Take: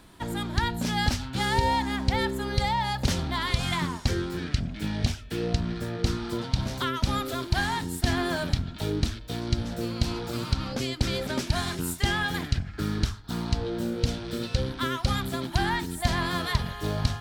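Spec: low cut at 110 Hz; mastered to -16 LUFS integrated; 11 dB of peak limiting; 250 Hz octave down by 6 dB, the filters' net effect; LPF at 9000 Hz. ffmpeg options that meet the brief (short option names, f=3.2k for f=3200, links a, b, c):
-af "highpass=110,lowpass=9k,equalizer=f=250:t=o:g=-8,volume=18dB,alimiter=limit=-5.5dB:level=0:latency=1"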